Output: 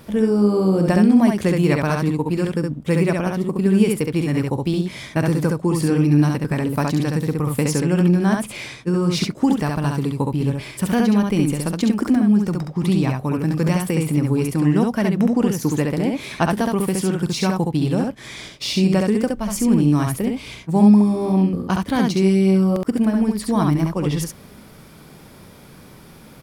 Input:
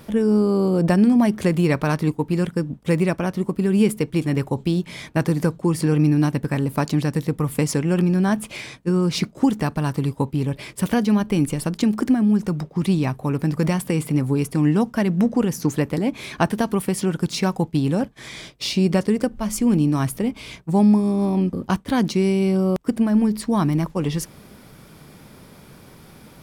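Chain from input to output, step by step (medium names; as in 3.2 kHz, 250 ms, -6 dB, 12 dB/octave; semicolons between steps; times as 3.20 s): early reflections 43 ms -17.5 dB, 68 ms -3 dB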